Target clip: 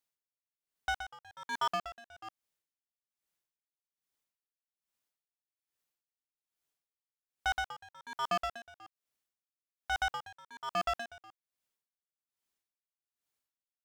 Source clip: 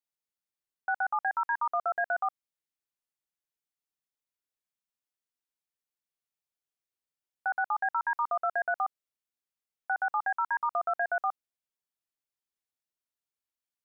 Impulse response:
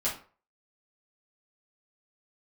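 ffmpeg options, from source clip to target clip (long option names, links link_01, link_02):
-af "volume=33dB,asoftclip=hard,volume=-33dB,aeval=exprs='val(0)*pow(10,-25*(0.5-0.5*cos(2*PI*1.2*n/s))/20)':channel_layout=same,volume=6dB"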